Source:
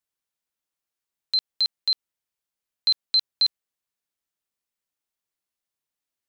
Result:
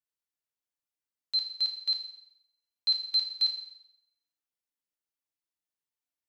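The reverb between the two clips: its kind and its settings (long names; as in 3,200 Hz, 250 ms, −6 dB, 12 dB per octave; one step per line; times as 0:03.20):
feedback delay network reverb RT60 0.8 s, low-frequency decay 0.8×, high-frequency decay 0.95×, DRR 0.5 dB
level −10.5 dB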